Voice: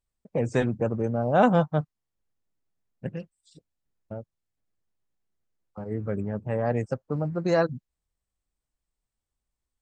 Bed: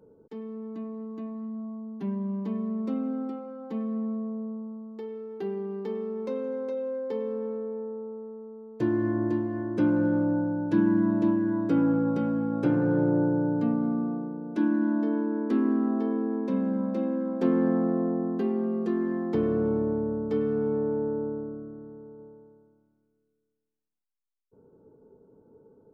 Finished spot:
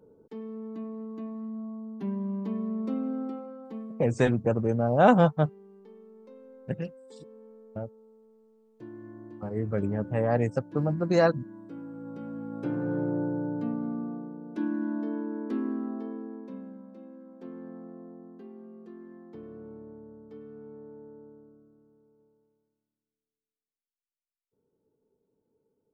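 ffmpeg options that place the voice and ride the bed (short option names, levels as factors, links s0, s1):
-filter_complex "[0:a]adelay=3650,volume=1.12[s0];[1:a]volume=3.98,afade=t=out:st=3.4:d=0.67:silence=0.133352,afade=t=in:st=11.92:d=1:silence=0.223872,afade=t=out:st=15.48:d=1.35:silence=0.211349[s1];[s0][s1]amix=inputs=2:normalize=0"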